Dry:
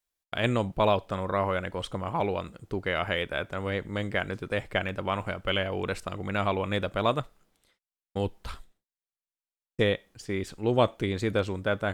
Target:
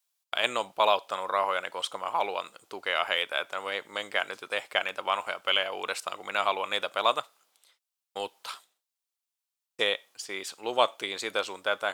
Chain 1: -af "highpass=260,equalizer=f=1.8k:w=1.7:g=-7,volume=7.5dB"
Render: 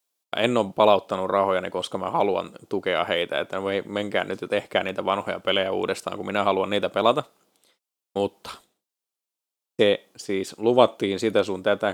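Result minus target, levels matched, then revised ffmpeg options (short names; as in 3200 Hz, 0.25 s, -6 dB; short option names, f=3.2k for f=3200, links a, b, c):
250 Hz band +13.0 dB
-af "highpass=960,equalizer=f=1.8k:w=1.7:g=-7,volume=7.5dB"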